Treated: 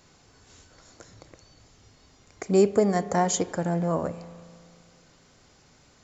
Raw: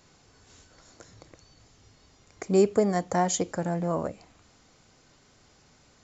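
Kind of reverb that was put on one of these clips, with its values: spring tank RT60 2.2 s, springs 35 ms, chirp 35 ms, DRR 15 dB; trim +1.5 dB

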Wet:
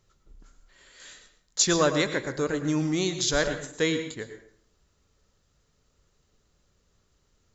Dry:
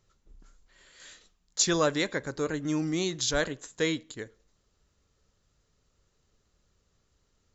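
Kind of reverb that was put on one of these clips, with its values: plate-style reverb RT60 0.57 s, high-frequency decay 0.75×, pre-delay 90 ms, DRR 8.5 dB; trim +2.5 dB

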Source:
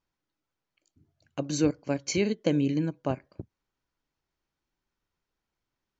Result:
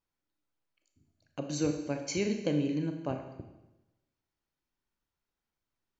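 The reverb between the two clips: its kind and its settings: Schroeder reverb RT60 1 s, combs from 27 ms, DRR 5 dB; trim -5.5 dB

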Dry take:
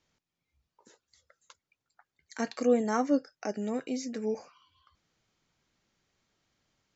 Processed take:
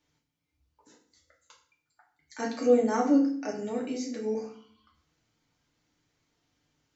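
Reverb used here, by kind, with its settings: FDN reverb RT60 0.52 s, low-frequency decay 1.55×, high-frequency decay 0.9×, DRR -2 dB; trim -3.5 dB

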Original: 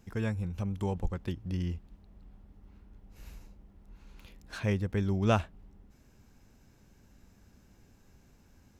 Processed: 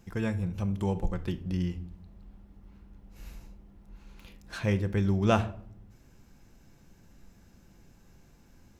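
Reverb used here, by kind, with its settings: simulated room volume 800 m³, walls furnished, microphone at 0.79 m; trim +2 dB

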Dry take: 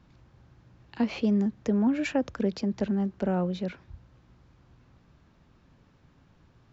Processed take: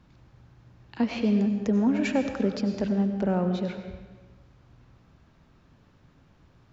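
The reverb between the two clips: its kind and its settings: algorithmic reverb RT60 1.3 s, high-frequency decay 0.85×, pre-delay 55 ms, DRR 6.5 dB; trim +1 dB

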